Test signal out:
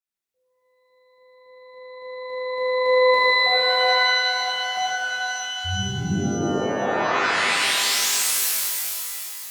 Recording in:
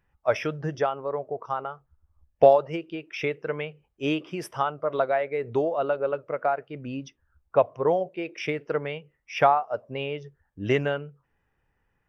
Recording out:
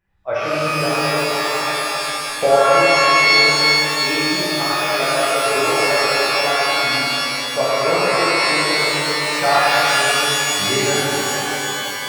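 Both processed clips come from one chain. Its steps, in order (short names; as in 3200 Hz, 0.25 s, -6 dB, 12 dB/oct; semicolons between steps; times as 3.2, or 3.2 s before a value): shimmer reverb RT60 3.4 s, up +12 st, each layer -2 dB, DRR -10.5 dB; gain -4.5 dB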